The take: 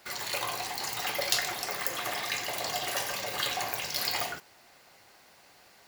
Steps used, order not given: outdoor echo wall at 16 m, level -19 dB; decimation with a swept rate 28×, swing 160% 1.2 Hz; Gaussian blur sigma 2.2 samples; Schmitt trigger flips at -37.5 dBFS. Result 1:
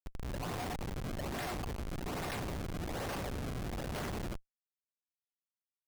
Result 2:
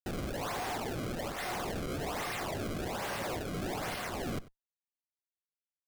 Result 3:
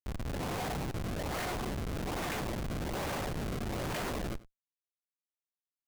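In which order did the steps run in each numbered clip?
Gaussian blur > decimation with a swept rate > outdoor echo > Schmitt trigger; Schmitt trigger > Gaussian blur > decimation with a swept rate > outdoor echo; decimation with a swept rate > Gaussian blur > Schmitt trigger > outdoor echo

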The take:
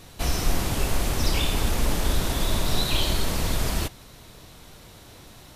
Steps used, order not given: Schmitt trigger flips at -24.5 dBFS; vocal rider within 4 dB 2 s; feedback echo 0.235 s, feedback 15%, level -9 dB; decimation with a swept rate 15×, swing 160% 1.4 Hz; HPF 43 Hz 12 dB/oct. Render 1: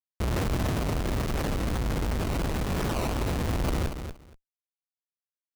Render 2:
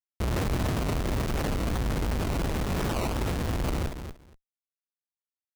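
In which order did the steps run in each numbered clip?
HPF > Schmitt trigger > decimation with a swept rate > feedback echo > vocal rider; HPF > Schmitt trigger > vocal rider > feedback echo > decimation with a swept rate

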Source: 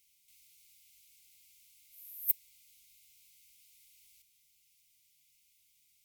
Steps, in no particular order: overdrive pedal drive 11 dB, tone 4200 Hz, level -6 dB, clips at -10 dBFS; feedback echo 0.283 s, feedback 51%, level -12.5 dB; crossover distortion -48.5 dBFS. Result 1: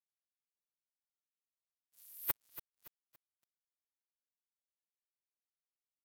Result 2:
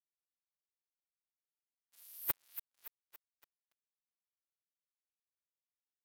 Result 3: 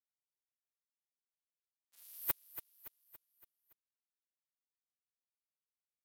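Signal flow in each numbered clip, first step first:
overdrive pedal > feedback echo > crossover distortion; feedback echo > crossover distortion > overdrive pedal; crossover distortion > overdrive pedal > feedback echo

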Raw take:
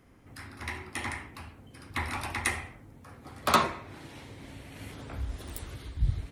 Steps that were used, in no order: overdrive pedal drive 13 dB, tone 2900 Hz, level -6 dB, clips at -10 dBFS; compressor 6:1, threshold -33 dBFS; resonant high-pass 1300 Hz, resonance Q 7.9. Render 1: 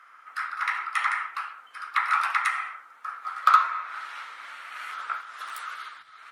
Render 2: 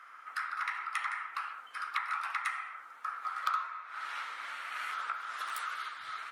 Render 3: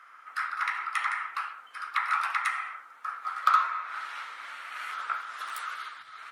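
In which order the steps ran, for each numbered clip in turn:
compressor > overdrive pedal > resonant high-pass; overdrive pedal > resonant high-pass > compressor; overdrive pedal > compressor > resonant high-pass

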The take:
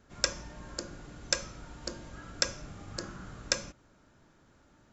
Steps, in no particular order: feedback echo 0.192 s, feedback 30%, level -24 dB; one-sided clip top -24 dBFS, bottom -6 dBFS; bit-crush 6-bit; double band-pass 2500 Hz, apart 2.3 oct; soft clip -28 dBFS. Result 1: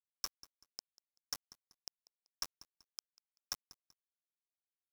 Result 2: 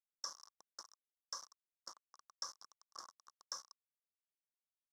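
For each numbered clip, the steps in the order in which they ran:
double band-pass > one-sided clip > bit-crush > feedback echo > soft clip; one-sided clip > feedback echo > bit-crush > soft clip > double band-pass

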